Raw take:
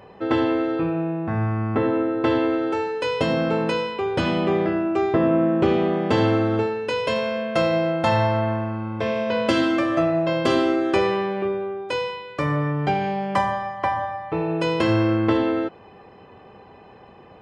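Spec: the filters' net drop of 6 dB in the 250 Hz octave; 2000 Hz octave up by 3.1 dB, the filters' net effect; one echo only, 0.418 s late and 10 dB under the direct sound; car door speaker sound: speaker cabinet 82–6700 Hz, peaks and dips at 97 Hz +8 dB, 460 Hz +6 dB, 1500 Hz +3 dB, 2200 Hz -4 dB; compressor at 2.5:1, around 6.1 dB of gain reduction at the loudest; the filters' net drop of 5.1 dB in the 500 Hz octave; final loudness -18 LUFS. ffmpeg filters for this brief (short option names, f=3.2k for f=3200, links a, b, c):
-af "equalizer=f=250:t=o:g=-6,equalizer=f=500:t=o:g=-8.5,equalizer=f=2k:t=o:g=4.5,acompressor=threshold=-28dB:ratio=2.5,highpass=82,equalizer=f=97:t=q:w=4:g=8,equalizer=f=460:t=q:w=4:g=6,equalizer=f=1.5k:t=q:w=4:g=3,equalizer=f=2.2k:t=q:w=4:g=-4,lowpass=f=6.7k:w=0.5412,lowpass=f=6.7k:w=1.3066,aecho=1:1:418:0.316,volume=11dB"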